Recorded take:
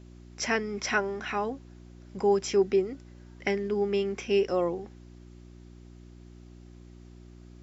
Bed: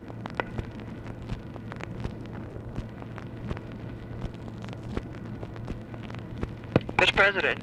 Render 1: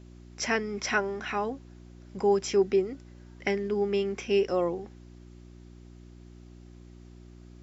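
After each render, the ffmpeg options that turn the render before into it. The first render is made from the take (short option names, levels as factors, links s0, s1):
-af anull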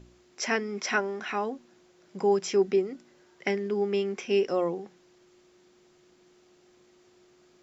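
-af "bandreject=f=60:t=h:w=4,bandreject=f=120:t=h:w=4,bandreject=f=180:t=h:w=4,bandreject=f=240:t=h:w=4,bandreject=f=300:t=h:w=4"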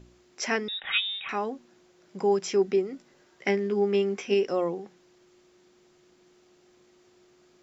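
-filter_complex "[0:a]asettb=1/sr,asplit=3[s0][s1][s2];[s0]atrim=end=0.684[s3];[s1]atrim=start=0.68:end=1.29,asetpts=PTS-STARTPTS,afade=t=in:d=0.004:c=qsin,afade=t=out:st=0.606:d=0.004:c=qsin,lowpass=f=3400:t=q:w=0.5098,lowpass=f=3400:t=q:w=0.6013,lowpass=f=3400:t=q:w=0.9,lowpass=f=3400:t=q:w=2.563,afreqshift=-4000[s4];[s2]atrim=start=1.286[s5];[s3][s4]acrossfade=d=0.004:c1=hsin:c2=qsin[s6];[s6][s5]acrossfade=d=0.004:c1=qsin:c2=hsin,asettb=1/sr,asplit=3[s7][s8][s9];[s7]atrim=end=2.924[s10];[s8]atrim=start=2.92:end=4.34,asetpts=PTS-STARTPTS,afade=t=in:d=0.004:c=qsin,afade=t=out:st=1.416:d=0.004:c=qsin,asplit=2[s11][s12];[s12]adelay=15,volume=0.473[s13];[s11][s13]amix=inputs=2:normalize=0,atrim=end_sample=62622[s14];[s9]atrim=start=4.336[s15];[s10][s14]acrossfade=d=0.004:c1=hsin:c2=qsin[s16];[s16][s15]acrossfade=d=0.004:c1=qsin:c2=hsin"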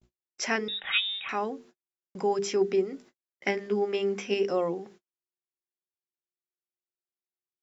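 -af "bandreject=f=50:t=h:w=6,bandreject=f=100:t=h:w=6,bandreject=f=150:t=h:w=6,bandreject=f=200:t=h:w=6,bandreject=f=250:t=h:w=6,bandreject=f=300:t=h:w=6,bandreject=f=350:t=h:w=6,bandreject=f=400:t=h:w=6,bandreject=f=450:t=h:w=6,agate=range=0.00355:threshold=0.00282:ratio=16:detection=peak"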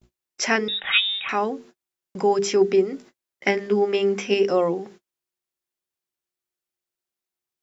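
-af "volume=2.24"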